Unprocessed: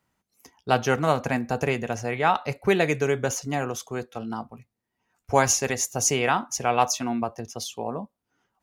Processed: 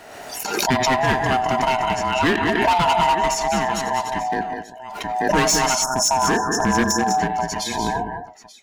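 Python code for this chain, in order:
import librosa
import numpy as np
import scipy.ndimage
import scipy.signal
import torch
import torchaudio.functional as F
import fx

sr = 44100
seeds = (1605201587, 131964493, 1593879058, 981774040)

p1 = fx.band_swap(x, sr, width_hz=500)
p2 = p1 + fx.echo_multitap(p1, sr, ms=(90, 177, 200, 291, 886), db=(-19.5, -16.0, -7.5, -20.0, -19.5), dry=0)
p3 = fx.spec_erase(p2, sr, start_s=5.83, length_s=1.36, low_hz=1800.0, high_hz=5100.0)
p4 = fx.high_shelf(p3, sr, hz=10000.0, db=-10.0)
p5 = fx.rider(p4, sr, range_db=4, speed_s=2.0)
p6 = p4 + (p5 * librosa.db_to_amplitude(1.0))
p7 = fx.low_shelf(p6, sr, hz=120.0, db=-8.5)
p8 = np.clip(p7, -10.0 ** (-13.5 / 20.0), 10.0 ** (-13.5 / 20.0))
y = fx.pre_swell(p8, sr, db_per_s=38.0)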